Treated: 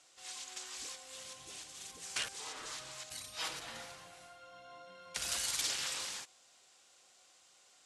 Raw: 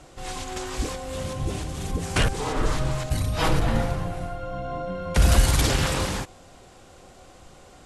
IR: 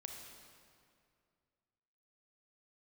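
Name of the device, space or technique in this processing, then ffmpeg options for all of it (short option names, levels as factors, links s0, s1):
piezo pickup straight into a mixer: -af "lowpass=6700,aderivative,volume=0.794"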